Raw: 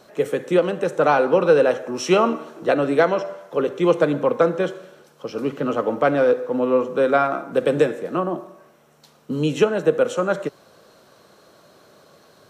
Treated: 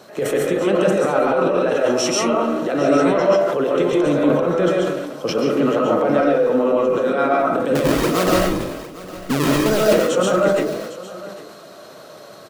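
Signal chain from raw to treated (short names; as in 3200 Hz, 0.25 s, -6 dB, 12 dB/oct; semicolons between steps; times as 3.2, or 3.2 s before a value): HPF 100 Hz; negative-ratio compressor -20 dBFS, ratio -0.5; limiter -15.5 dBFS, peak gain reduction 9 dB; 7.75–9.93 decimation with a swept rate 36×, swing 160% 1.9 Hz; echo 0.806 s -17.5 dB; reverb RT60 0.40 s, pre-delay 95 ms, DRR -2.5 dB; sustainer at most 43 dB/s; gain +3 dB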